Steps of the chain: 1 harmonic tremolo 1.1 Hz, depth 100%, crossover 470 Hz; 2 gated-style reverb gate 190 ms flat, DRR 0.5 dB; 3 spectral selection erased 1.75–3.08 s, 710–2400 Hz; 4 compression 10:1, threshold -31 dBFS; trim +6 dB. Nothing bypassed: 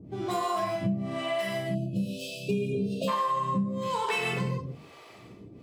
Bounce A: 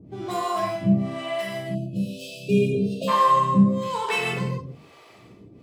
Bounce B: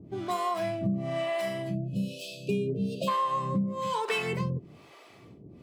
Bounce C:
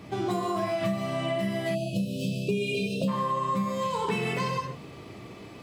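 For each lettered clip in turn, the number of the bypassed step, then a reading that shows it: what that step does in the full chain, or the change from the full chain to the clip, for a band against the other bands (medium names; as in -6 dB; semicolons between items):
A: 4, mean gain reduction 3.0 dB; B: 2, momentary loudness spread change -12 LU; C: 1, momentary loudness spread change -3 LU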